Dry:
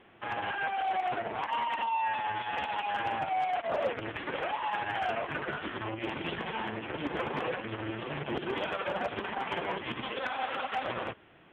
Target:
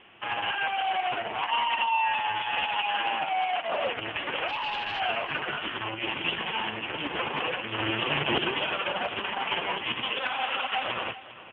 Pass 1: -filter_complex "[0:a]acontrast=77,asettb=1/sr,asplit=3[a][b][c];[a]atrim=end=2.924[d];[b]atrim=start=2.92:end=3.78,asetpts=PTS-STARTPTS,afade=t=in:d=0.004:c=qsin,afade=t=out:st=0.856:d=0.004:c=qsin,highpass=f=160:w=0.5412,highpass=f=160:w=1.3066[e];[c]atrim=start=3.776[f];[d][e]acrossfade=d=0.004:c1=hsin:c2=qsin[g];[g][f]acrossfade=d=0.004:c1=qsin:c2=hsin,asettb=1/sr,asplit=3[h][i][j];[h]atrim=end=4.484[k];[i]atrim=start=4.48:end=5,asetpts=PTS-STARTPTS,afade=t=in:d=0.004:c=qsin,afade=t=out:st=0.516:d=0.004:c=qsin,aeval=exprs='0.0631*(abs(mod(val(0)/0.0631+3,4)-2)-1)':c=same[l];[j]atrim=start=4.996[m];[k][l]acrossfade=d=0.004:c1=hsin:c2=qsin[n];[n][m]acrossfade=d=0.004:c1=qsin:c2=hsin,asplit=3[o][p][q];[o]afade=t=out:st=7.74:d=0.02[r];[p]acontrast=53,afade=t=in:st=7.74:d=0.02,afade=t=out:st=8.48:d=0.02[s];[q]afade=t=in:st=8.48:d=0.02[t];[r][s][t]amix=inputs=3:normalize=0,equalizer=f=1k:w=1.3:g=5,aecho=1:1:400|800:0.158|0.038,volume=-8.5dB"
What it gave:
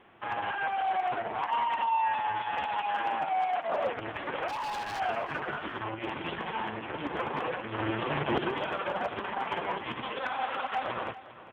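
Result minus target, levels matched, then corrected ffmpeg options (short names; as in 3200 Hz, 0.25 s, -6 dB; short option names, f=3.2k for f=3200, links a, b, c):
4000 Hz band -8.5 dB
-filter_complex "[0:a]acontrast=77,asettb=1/sr,asplit=3[a][b][c];[a]atrim=end=2.924[d];[b]atrim=start=2.92:end=3.78,asetpts=PTS-STARTPTS,afade=t=in:d=0.004:c=qsin,afade=t=out:st=0.856:d=0.004:c=qsin,highpass=f=160:w=0.5412,highpass=f=160:w=1.3066[e];[c]atrim=start=3.776[f];[d][e]acrossfade=d=0.004:c1=hsin:c2=qsin[g];[g][f]acrossfade=d=0.004:c1=qsin:c2=hsin,asettb=1/sr,asplit=3[h][i][j];[h]atrim=end=4.484[k];[i]atrim=start=4.48:end=5,asetpts=PTS-STARTPTS,afade=t=in:d=0.004:c=qsin,afade=t=out:st=0.516:d=0.004:c=qsin,aeval=exprs='0.0631*(abs(mod(val(0)/0.0631+3,4)-2)-1)':c=same[l];[j]atrim=start=4.996[m];[k][l]acrossfade=d=0.004:c1=hsin:c2=qsin[n];[n][m]acrossfade=d=0.004:c1=qsin:c2=hsin,asplit=3[o][p][q];[o]afade=t=out:st=7.74:d=0.02[r];[p]acontrast=53,afade=t=in:st=7.74:d=0.02,afade=t=out:st=8.48:d=0.02[s];[q]afade=t=in:st=8.48:d=0.02[t];[r][s][t]amix=inputs=3:normalize=0,lowpass=f=2.9k:t=q:w=5.3,equalizer=f=1k:w=1.3:g=5,aecho=1:1:400|800:0.158|0.038,volume=-8.5dB"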